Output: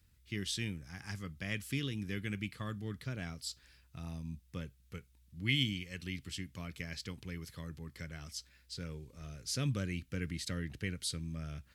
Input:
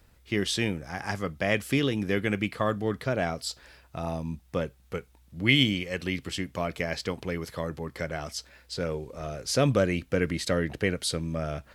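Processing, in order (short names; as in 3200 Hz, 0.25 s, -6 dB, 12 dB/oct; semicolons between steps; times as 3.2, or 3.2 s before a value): HPF 54 Hz; passive tone stack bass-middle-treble 6-0-2; gain +7.5 dB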